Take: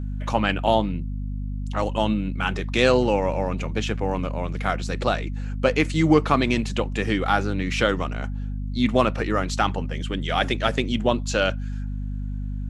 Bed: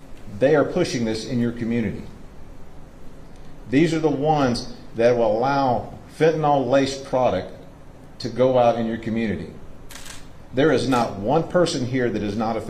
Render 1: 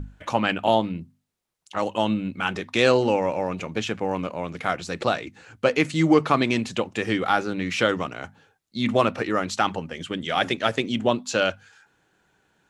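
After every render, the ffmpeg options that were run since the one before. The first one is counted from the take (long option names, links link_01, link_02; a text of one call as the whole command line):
ffmpeg -i in.wav -af "bandreject=frequency=50:width_type=h:width=6,bandreject=frequency=100:width_type=h:width=6,bandreject=frequency=150:width_type=h:width=6,bandreject=frequency=200:width_type=h:width=6,bandreject=frequency=250:width_type=h:width=6" out.wav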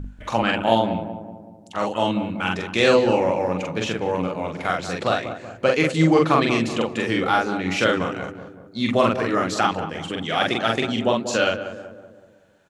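ffmpeg -i in.wav -filter_complex "[0:a]asplit=2[link_01][link_02];[link_02]adelay=44,volume=-2dB[link_03];[link_01][link_03]amix=inputs=2:normalize=0,asplit=2[link_04][link_05];[link_05]adelay=188,lowpass=frequency=1100:poles=1,volume=-9dB,asplit=2[link_06][link_07];[link_07]adelay=188,lowpass=frequency=1100:poles=1,volume=0.55,asplit=2[link_08][link_09];[link_09]adelay=188,lowpass=frequency=1100:poles=1,volume=0.55,asplit=2[link_10][link_11];[link_11]adelay=188,lowpass=frequency=1100:poles=1,volume=0.55,asplit=2[link_12][link_13];[link_13]adelay=188,lowpass=frequency=1100:poles=1,volume=0.55,asplit=2[link_14][link_15];[link_15]adelay=188,lowpass=frequency=1100:poles=1,volume=0.55[link_16];[link_04][link_06][link_08][link_10][link_12][link_14][link_16]amix=inputs=7:normalize=0" out.wav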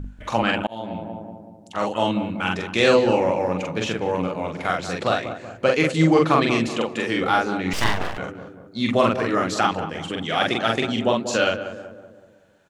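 ffmpeg -i in.wav -filter_complex "[0:a]asettb=1/sr,asplit=3[link_01][link_02][link_03];[link_01]atrim=end=6.674[link_04];[link_02]atrim=start=6.67:end=7.21,asetpts=PTS-STARTPTS,afade=type=in:duration=0.004:curve=qsin,afade=type=out:start_time=0.536:duration=0.004:curve=qsin,highpass=frequency=190:poles=1[link_05];[link_03]atrim=start=7.206[link_06];[link_04][link_05]acrossfade=duration=0.004:curve1=hsin:curve2=qsin[link_07];[link_07][link_06]acrossfade=duration=0.004:curve1=qsin:curve2=hsin,asettb=1/sr,asplit=3[link_08][link_09][link_10];[link_08]atrim=end=7.734[link_11];[link_09]atrim=start=7.73:end=8.18,asetpts=PTS-STARTPTS,afade=type=in:duration=0.004:curve=qsin,afade=type=out:start_time=0.446:duration=0.004:curve=qsin,aeval=exprs='abs(val(0))':channel_layout=same[link_12];[link_10]atrim=start=8.176[link_13];[link_11][link_12]acrossfade=duration=0.004:curve1=hsin:curve2=qsin[link_14];[link_14][link_13]acrossfade=duration=0.004:curve1=qsin:curve2=hsin,asplit=2[link_15][link_16];[link_15]atrim=end=0.67,asetpts=PTS-STARTPTS,afade=type=out:start_time=0.666:duration=0.004:curve=hsin[link_17];[link_16]atrim=start=0.67,asetpts=PTS-STARTPTS,afade=type=in:duration=0.53[link_18];[link_17][link_18]concat=n=2:v=0:a=1" out.wav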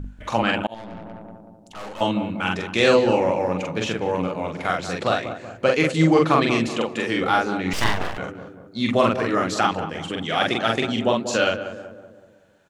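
ffmpeg -i in.wav -filter_complex "[0:a]asettb=1/sr,asplit=3[link_01][link_02][link_03];[link_01]atrim=end=0.744[link_04];[link_02]atrim=start=0.74:end=2.01,asetpts=PTS-STARTPTS,afade=type=in:duration=0.004:curve=qsin,afade=type=out:start_time=1.266:duration=0.004:curve=qsin,aeval=exprs='(tanh(44.7*val(0)+0.5)-tanh(0.5))/44.7':channel_layout=same[link_05];[link_03]atrim=start=2.006[link_06];[link_04][link_05]acrossfade=duration=0.004:curve1=hsin:curve2=qsin[link_07];[link_07][link_06]acrossfade=duration=0.004:curve1=qsin:curve2=hsin" out.wav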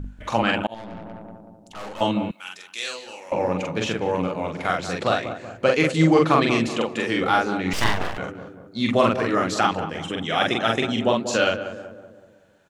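ffmpeg -i in.wav -filter_complex "[0:a]asettb=1/sr,asplit=3[link_01][link_02][link_03];[link_01]atrim=end=2.314[link_04];[link_02]atrim=start=2.31:end=3.32,asetpts=PTS-STARTPTS,afade=type=in:duration=0.004:curve=qsin,afade=type=out:start_time=1.006:duration=0.004:curve=qsin,aderivative[link_05];[link_03]atrim=start=3.316[link_06];[link_04][link_05]acrossfade=duration=0.004:curve1=hsin:curve2=qsin[link_07];[link_07][link_06]acrossfade=duration=0.004:curve1=qsin:curve2=hsin,asettb=1/sr,asplit=3[link_08][link_09][link_10];[link_08]atrim=end=10.044[link_11];[link_09]atrim=start=10.04:end=11.04,asetpts=PTS-STARTPTS,afade=type=in:duration=0.004:curve=qsin,afade=type=out:start_time=0.996:duration=0.004:curve=qsin,asuperstop=centerf=4500:order=20:qfactor=7.3[link_12];[link_10]atrim=start=11.036[link_13];[link_11][link_12]acrossfade=duration=0.004:curve1=hsin:curve2=qsin[link_14];[link_14][link_13]acrossfade=duration=0.004:curve1=qsin:curve2=hsin" out.wav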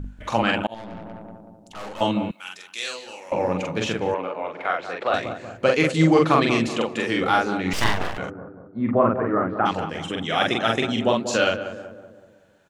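ffmpeg -i in.wav -filter_complex "[0:a]asettb=1/sr,asplit=3[link_01][link_02][link_03];[link_01]atrim=end=4.144[link_04];[link_02]atrim=start=4.14:end=5.14,asetpts=PTS-STARTPTS,afade=type=in:duration=0.004:curve=qsin,afade=type=out:start_time=0.996:duration=0.004:curve=qsin,acrossover=split=350 3200:gain=0.1 1 0.112[link_05][link_06][link_07];[link_05][link_06][link_07]amix=inputs=3:normalize=0[link_08];[link_03]atrim=start=5.136[link_09];[link_04][link_08]acrossfade=duration=0.004:curve1=hsin:curve2=qsin[link_10];[link_10][link_09]acrossfade=duration=0.004:curve1=qsin:curve2=hsin,asplit=3[link_11][link_12][link_13];[link_11]afade=type=out:start_time=8.29:duration=0.02[link_14];[link_12]lowpass=frequency=1500:width=0.5412,lowpass=frequency=1500:width=1.3066,afade=type=in:start_time=8.29:duration=0.02,afade=type=out:start_time=9.65:duration=0.02[link_15];[link_13]afade=type=in:start_time=9.65:duration=0.02[link_16];[link_14][link_15][link_16]amix=inputs=3:normalize=0" out.wav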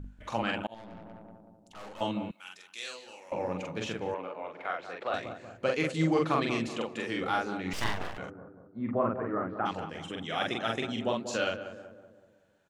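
ffmpeg -i in.wav -af "volume=-10dB" out.wav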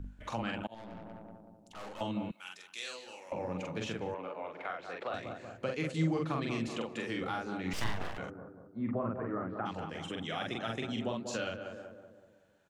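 ffmpeg -i in.wav -filter_complex "[0:a]acrossover=split=220[link_01][link_02];[link_02]acompressor=threshold=-37dB:ratio=2.5[link_03];[link_01][link_03]amix=inputs=2:normalize=0" out.wav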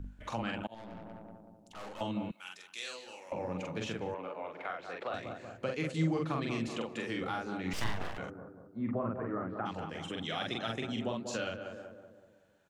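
ffmpeg -i in.wav -filter_complex "[0:a]asettb=1/sr,asplit=3[link_01][link_02][link_03];[link_01]atrim=end=10.154[link_04];[link_02]atrim=start=10.15:end=10.72,asetpts=PTS-STARTPTS,afade=type=in:duration=0.004:curve=qsin,afade=type=out:start_time=0.566:duration=0.004:curve=qsin,equalizer=frequency=4200:width=2.6:gain=9[link_05];[link_03]atrim=start=10.716[link_06];[link_04][link_05]acrossfade=duration=0.004:curve1=hsin:curve2=qsin[link_07];[link_07][link_06]acrossfade=duration=0.004:curve1=qsin:curve2=hsin" out.wav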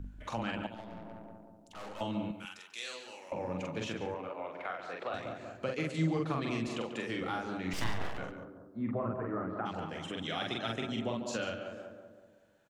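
ffmpeg -i in.wav -filter_complex "[0:a]asplit=2[link_01][link_02];[link_02]adelay=141,lowpass=frequency=4300:poles=1,volume=-10dB,asplit=2[link_03][link_04];[link_04]adelay=141,lowpass=frequency=4300:poles=1,volume=0.17[link_05];[link_01][link_03][link_05]amix=inputs=3:normalize=0" out.wav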